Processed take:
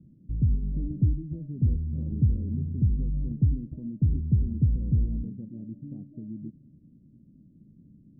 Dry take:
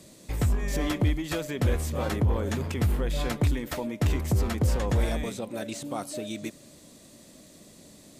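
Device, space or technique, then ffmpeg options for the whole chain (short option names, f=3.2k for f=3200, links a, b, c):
the neighbour's flat through the wall: -af "lowpass=f=250:w=0.5412,lowpass=f=250:w=1.3066,equalizer=f=140:t=o:w=0.67:g=5"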